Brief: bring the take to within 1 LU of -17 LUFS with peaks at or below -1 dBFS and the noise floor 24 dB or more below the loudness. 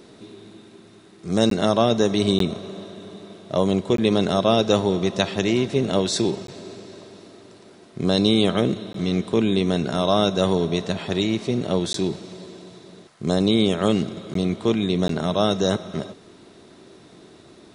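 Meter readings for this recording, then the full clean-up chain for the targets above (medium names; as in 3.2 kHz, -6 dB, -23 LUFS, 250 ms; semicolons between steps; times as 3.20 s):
dropouts 8; longest dropout 13 ms; loudness -22.0 LUFS; peak level -4.0 dBFS; loudness target -17.0 LUFS
-> interpolate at 1.50/2.39/3.97/6.47/8.93/11.93/14.34/15.08 s, 13 ms; trim +5 dB; peak limiter -1 dBFS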